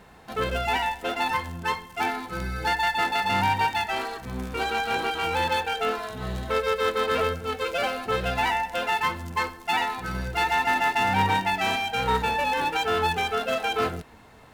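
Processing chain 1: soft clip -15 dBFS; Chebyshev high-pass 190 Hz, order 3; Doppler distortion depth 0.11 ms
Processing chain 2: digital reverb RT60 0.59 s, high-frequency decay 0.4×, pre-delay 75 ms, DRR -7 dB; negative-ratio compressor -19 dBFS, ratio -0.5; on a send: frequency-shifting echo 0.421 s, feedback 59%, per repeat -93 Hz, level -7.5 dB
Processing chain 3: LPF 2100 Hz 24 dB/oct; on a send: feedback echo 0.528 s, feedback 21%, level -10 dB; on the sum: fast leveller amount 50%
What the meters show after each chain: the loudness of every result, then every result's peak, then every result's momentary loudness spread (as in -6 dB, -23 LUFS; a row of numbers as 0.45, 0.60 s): -27.0, -19.0, -23.5 LUFS; -14.5, -5.5, -10.5 dBFS; 7, 3, 4 LU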